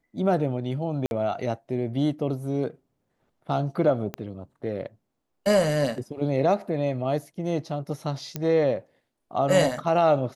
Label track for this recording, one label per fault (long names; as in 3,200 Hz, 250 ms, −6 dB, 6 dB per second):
1.060000	1.110000	drop-out 51 ms
4.140000	4.140000	click −17 dBFS
8.360000	8.360000	click −14 dBFS